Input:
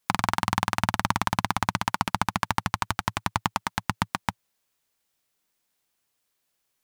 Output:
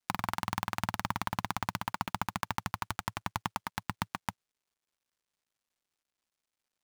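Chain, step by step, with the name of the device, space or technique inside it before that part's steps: early companding sampler (sample-rate reducer 18 kHz, jitter 0%; companded quantiser 6-bit); trim -8.5 dB

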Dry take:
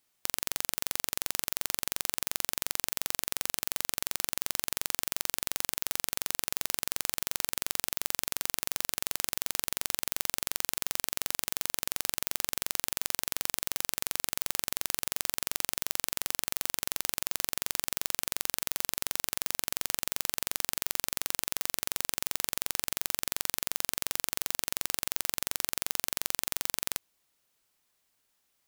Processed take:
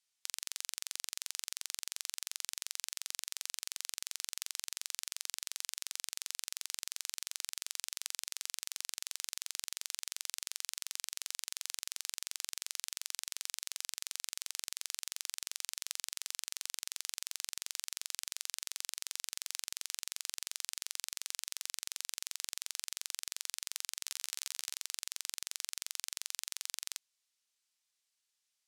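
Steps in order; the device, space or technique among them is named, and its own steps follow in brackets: 24.04–24.75 s: doubling 14 ms -9 dB; piezo pickup straight into a mixer (low-pass 6 kHz 12 dB/octave; differentiator); trim +1 dB

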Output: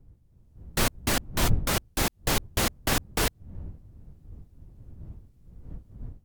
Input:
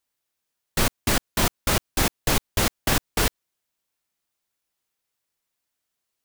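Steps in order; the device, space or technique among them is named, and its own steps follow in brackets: smartphone video outdoors (wind noise 88 Hz; level rider gain up to 7 dB; trim -8 dB; AAC 96 kbps 44.1 kHz)

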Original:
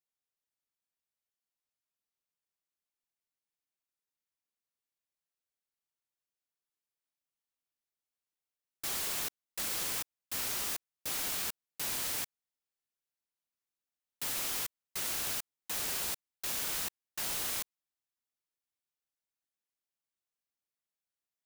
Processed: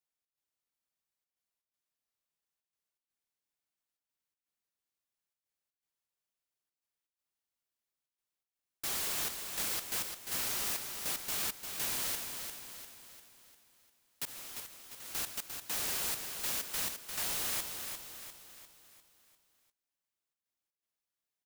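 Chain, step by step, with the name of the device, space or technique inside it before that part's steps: 14.25–15.15 s: expander -26 dBFS; trance gate with a delay (trance gate "xx.xxxxxxx." 121 bpm -12 dB; feedback delay 349 ms, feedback 48%, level -6.5 dB)

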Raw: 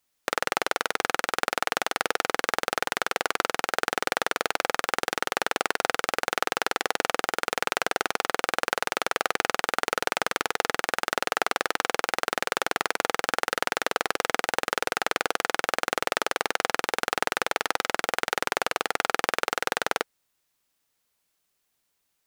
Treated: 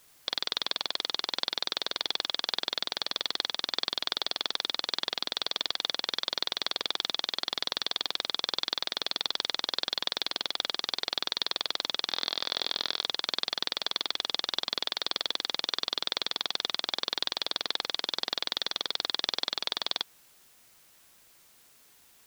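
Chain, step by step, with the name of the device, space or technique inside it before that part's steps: 12.08–13.03 s: doubling 27 ms -8.5 dB; split-band scrambled radio (four frequency bands reordered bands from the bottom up 3412; band-pass 340–3300 Hz; white noise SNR 26 dB)

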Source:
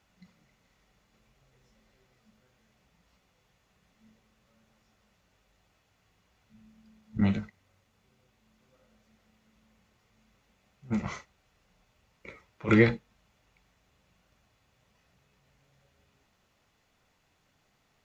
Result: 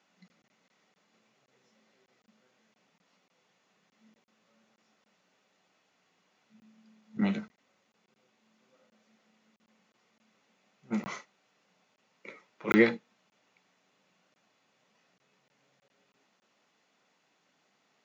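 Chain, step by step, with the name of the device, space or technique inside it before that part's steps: call with lost packets (high-pass 180 Hz 24 dB/octave; resampled via 16 kHz; lost packets); bass shelf 60 Hz -11 dB

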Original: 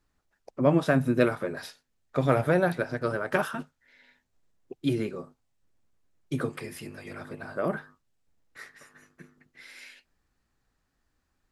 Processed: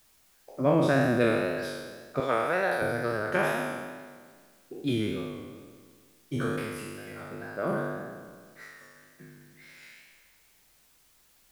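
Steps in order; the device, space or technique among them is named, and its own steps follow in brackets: spectral sustain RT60 1.77 s; 2.20–2.82 s: frequency weighting A; plain cassette with noise reduction switched in (tape noise reduction on one side only decoder only; wow and flutter; white noise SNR 32 dB); trim -4 dB

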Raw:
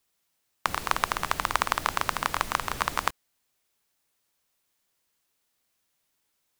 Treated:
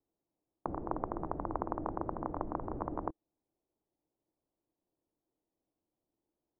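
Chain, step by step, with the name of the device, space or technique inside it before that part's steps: under water (low-pass 790 Hz 24 dB/octave; peaking EQ 320 Hz +11 dB 0.45 oct); trim -2.5 dB

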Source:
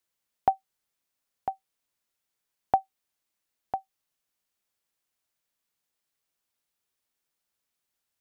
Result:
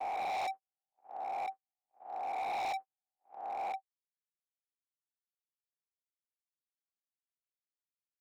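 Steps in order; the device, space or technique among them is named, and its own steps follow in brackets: reverse spectral sustain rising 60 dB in 2.23 s; walkie-talkie (band-pass 400–2200 Hz; hard clipper -27 dBFS, distortion -5 dB; gate -34 dBFS, range -53 dB); trim -7 dB

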